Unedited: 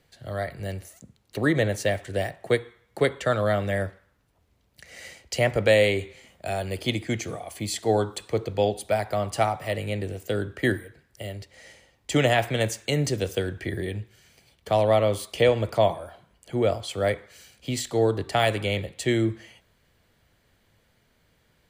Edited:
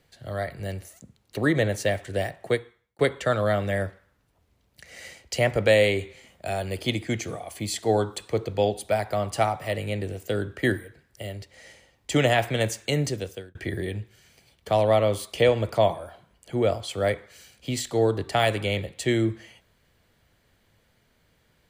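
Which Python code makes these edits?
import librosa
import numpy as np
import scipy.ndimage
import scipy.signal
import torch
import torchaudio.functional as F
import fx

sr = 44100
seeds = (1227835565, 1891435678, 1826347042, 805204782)

y = fx.edit(x, sr, fx.fade_out_span(start_s=2.43, length_s=0.56),
    fx.fade_out_span(start_s=12.97, length_s=0.58), tone=tone)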